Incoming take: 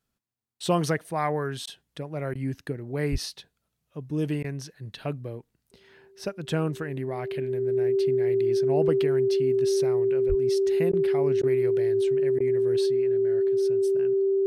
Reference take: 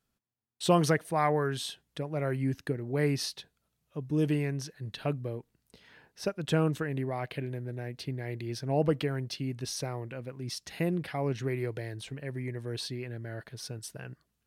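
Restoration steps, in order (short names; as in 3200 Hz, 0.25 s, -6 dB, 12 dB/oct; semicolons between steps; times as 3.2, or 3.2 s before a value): notch 390 Hz, Q 30; 3.11–3.23 HPF 140 Hz 24 dB/oct; 10.28–10.4 HPF 140 Hz 24 dB/oct; interpolate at 1.66/2.34/4.43/10.92/11.42/12.39, 11 ms; 12.86 gain correction +4.5 dB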